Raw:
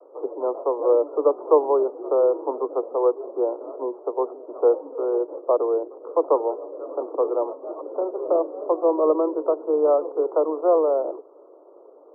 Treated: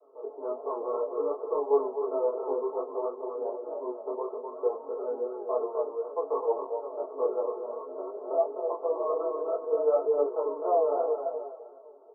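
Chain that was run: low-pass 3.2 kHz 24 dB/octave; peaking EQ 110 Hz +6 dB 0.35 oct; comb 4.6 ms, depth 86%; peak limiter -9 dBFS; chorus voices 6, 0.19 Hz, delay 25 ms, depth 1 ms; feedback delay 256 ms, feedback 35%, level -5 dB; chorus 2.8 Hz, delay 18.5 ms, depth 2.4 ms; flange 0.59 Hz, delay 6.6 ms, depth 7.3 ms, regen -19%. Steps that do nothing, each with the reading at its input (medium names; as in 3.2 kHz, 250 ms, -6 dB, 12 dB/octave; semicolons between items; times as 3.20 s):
low-pass 3.2 kHz: input has nothing above 1.3 kHz; peaking EQ 110 Hz: input has nothing below 250 Hz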